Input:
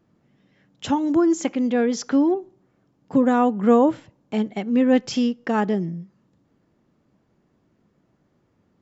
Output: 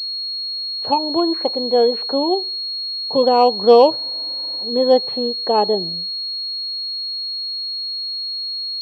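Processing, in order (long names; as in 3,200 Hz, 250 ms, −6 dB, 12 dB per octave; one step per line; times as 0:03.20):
flat-topped bell 640 Hz +15.5 dB
frozen spectrum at 0:03.99, 0.65 s
switching amplifier with a slow clock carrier 4,300 Hz
level −7 dB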